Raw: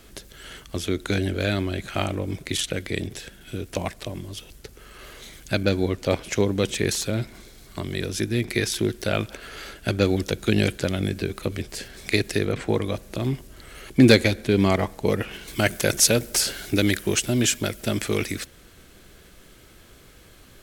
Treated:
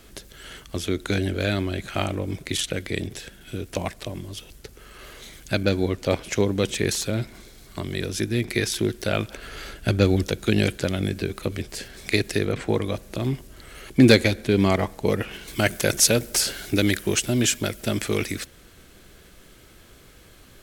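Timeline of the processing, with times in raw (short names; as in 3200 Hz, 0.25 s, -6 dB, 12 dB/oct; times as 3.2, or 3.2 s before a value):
9.37–10.27 low shelf 140 Hz +7 dB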